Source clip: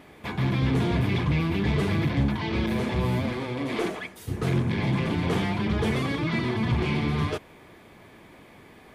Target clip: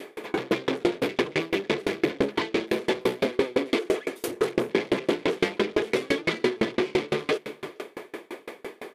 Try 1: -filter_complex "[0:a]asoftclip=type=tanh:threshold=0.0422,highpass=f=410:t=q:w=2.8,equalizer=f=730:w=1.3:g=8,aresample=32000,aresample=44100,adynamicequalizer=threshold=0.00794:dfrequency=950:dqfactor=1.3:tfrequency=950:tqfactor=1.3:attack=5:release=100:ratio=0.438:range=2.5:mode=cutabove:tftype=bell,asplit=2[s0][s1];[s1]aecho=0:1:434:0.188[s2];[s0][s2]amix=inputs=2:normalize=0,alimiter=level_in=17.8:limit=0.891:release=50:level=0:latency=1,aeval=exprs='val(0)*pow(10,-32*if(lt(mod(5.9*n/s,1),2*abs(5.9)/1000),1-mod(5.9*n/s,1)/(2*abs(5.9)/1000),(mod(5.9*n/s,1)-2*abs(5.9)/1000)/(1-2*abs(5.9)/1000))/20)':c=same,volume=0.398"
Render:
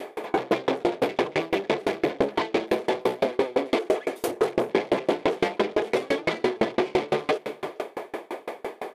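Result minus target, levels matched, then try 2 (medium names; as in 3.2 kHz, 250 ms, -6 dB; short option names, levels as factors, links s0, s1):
1 kHz band +5.5 dB
-filter_complex "[0:a]asoftclip=type=tanh:threshold=0.0422,highpass=f=410:t=q:w=2.8,equalizer=f=730:w=1.3:g=-3.5,aresample=32000,aresample=44100,adynamicequalizer=threshold=0.00794:dfrequency=950:dqfactor=1.3:tfrequency=950:tqfactor=1.3:attack=5:release=100:ratio=0.438:range=2.5:mode=cutabove:tftype=bell,asplit=2[s0][s1];[s1]aecho=0:1:434:0.188[s2];[s0][s2]amix=inputs=2:normalize=0,alimiter=level_in=17.8:limit=0.891:release=50:level=0:latency=1,aeval=exprs='val(0)*pow(10,-32*if(lt(mod(5.9*n/s,1),2*abs(5.9)/1000),1-mod(5.9*n/s,1)/(2*abs(5.9)/1000),(mod(5.9*n/s,1)-2*abs(5.9)/1000)/(1-2*abs(5.9)/1000))/20)':c=same,volume=0.398"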